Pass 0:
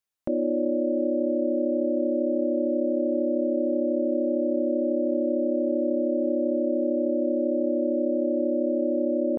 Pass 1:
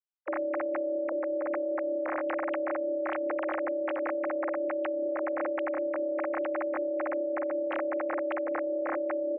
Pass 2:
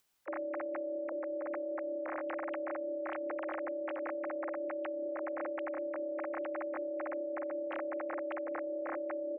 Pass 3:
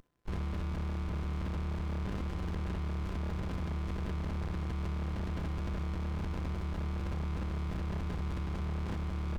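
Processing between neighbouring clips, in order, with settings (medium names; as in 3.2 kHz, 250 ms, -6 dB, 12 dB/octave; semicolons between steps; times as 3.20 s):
formants replaced by sine waves; high-pass 450 Hz 6 dB/octave; peak limiter -24.5 dBFS, peak gain reduction 6 dB
upward compressor, threshold -48 dBFS; trim -7 dB
in parallel at -4 dB: sine folder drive 6 dB, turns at -31 dBFS; on the sum: ring modulator 510 Hz; sliding maximum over 65 samples; trim +4.5 dB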